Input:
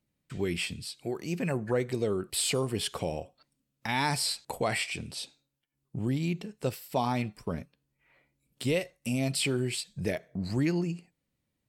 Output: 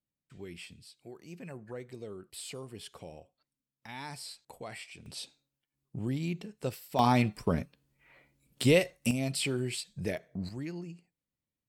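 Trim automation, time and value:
-14 dB
from 5.06 s -3.5 dB
from 6.99 s +5 dB
from 9.11 s -3 dB
from 10.49 s -11.5 dB

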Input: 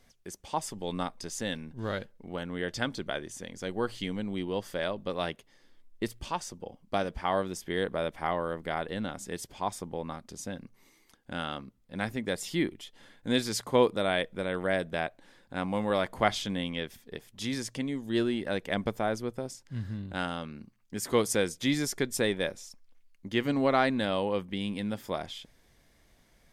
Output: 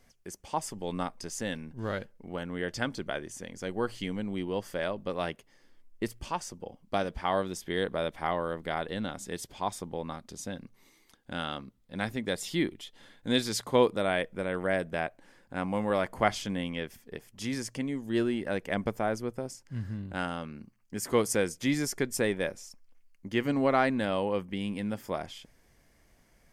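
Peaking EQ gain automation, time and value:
peaking EQ 3.7 kHz 0.33 oct
6.30 s -6.5 dB
7.31 s +2.5 dB
13.71 s +2.5 dB
14.18 s -9 dB

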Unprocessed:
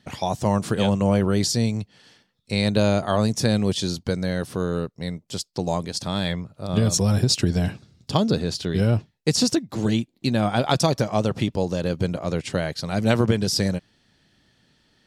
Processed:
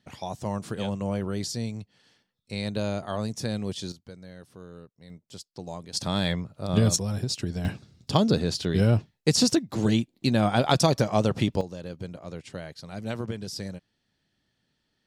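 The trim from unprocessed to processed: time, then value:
-9.5 dB
from 3.92 s -20 dB
from 5.10 s -13 dB
from 5.93 s -1 dB
from 6.96 s -9.5 dB
from 7.65 s -1 dB
from 11.61 s -13 dB

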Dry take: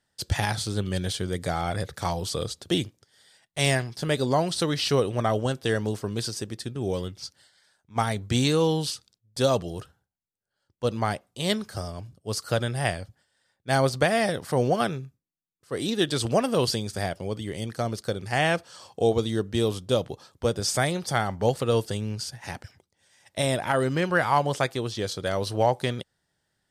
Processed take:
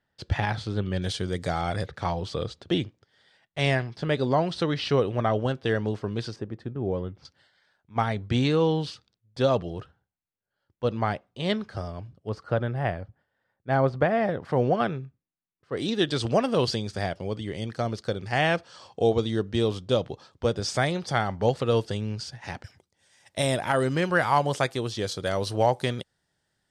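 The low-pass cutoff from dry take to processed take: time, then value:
2.8 kHz
from 1.02 s 6.6 kHz
from 1.86 s 3.2 kHz
from 6.36 s 1.4 kHz
from 7.25 s 3.1 kHz
from 12.29 s 1.6 kHz
from 14.45 s 2.6 kHz
from 15.77 s 5.1 kHz
from 22.64 s 11 kHz

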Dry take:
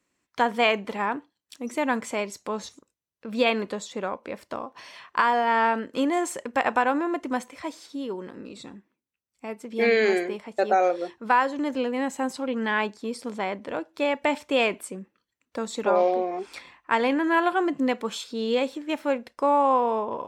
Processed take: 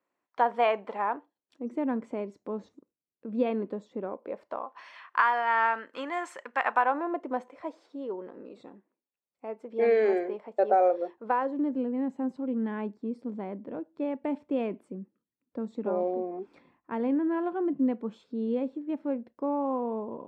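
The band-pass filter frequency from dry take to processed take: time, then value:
band-pass filter, Q 1.2
1.16 s 750 Hz
1.74 s 290 Hz
4.02 s 290 Hz
4.88 s 1.4 kHz
6.62 s 1.4 kHz
7.17 s 560 Hz
11.21 s 560 Hz
11.76 s 230 Hz

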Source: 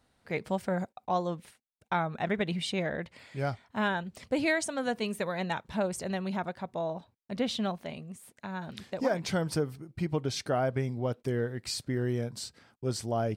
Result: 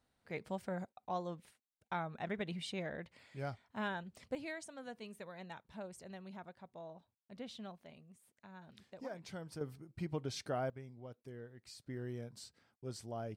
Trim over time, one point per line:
-10 dB
from 4.35 s -17 dB
from 9.61 s -9 dB
from 10.70 s -19.5 dB
from 11.86 s -13 dB

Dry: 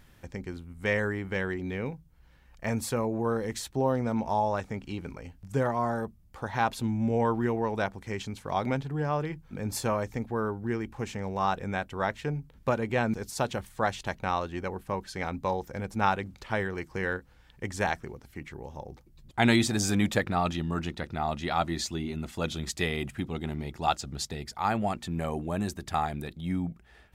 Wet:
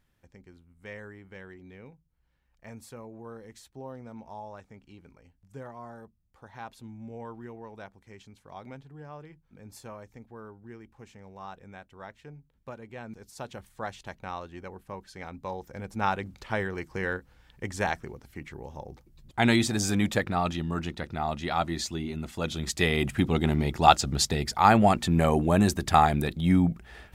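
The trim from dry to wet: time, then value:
12.98 s -15 dB
13.66 s -8 dB
15.32 s -8 dB
16.27 s 0 dB
22.44 s 0 dB
23.26 s +9 dB

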